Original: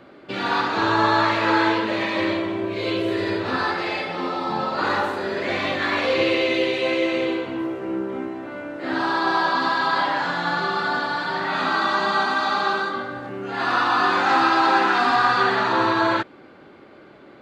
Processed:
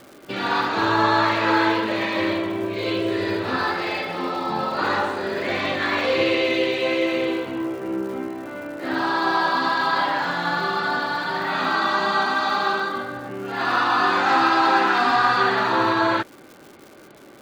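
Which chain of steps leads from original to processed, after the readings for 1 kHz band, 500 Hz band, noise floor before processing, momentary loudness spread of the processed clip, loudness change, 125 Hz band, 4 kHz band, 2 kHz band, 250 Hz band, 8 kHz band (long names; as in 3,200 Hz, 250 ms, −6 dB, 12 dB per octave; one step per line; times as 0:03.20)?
0.0 dB, 0.0 dB, −47 dBFS, 10 LU, 0.0 dB, 0.0 dB, 0.0 dB, 0.0 dB, 0.0 dB, can't be measured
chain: downsampling to 22,050 Hz
surface crackle 290 per second −37 dBFS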